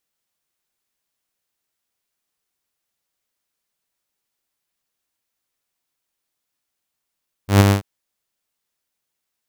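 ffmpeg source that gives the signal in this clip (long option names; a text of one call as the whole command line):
ffmpeg -f lavfi -i "aevalsrc='0.631*(2*mod(99.7*t,1)-1)':duration=0.337:sample_rate=44100,afade=type=in:duration=0.122,afade=type=out:start_time=0.122:duration=0.022:silence=0.562,afade=type=out:start_time=0.23:duration=0.107" out.wav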